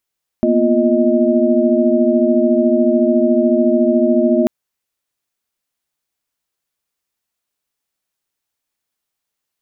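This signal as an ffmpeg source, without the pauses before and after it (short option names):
-f lavfi -i "aevalsrc='0.158*(sin(2*PI*233.08*t)+sin(2*PI*246.94*t)+sin(2*PI*349.23*t)+sin(2*PI*622.25*t))':d=4.04:s=44100"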